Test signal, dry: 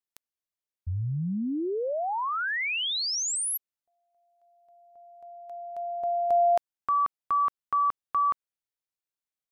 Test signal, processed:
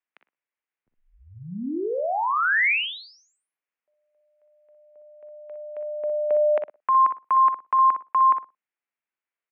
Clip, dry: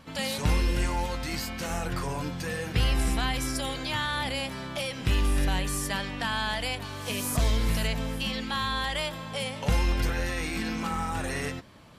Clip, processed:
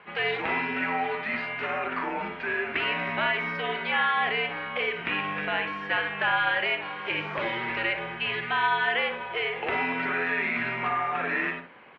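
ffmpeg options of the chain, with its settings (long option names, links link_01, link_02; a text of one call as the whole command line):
ffmpeg -i in.wav -filter_complex "[0:a]asplit=2[link_01][link_02];[link_02]adelay=45,volume=-14dB[link_03];[link_01][link_03]amix=inputs=2:normalize=0,asplit=2[link_04][link_05];[link_05]adelay=60,lowpass=frequency=1700:poles=1,volume=-6dB,asplit=2[link_06][link_07];[link_07]adelay=60,lowpass=frequency=1700:poles=1,volume=0.19,asplit=2[link_08][link_09];[link_09]adelay=60,lowpass=frequency=1700:poles=1,volume=0.19[link_10];[link_04][link_06][link_08][link_10]amix=inputs=4:normalize=0,crystalizer=i=8.5:c=0,highpass=frequency=320:width_type=q:width=0.5412,highpass=frequency=320:width_type=q:width=1.307,lowpass=frequency=2500:width_type=q:width=0.5176,lowpass=frequency=2500:width_type=q:width=0.7071,lowpass=frequency=2500:width_type=q:width=1.932,afreqshift=-94" out.wav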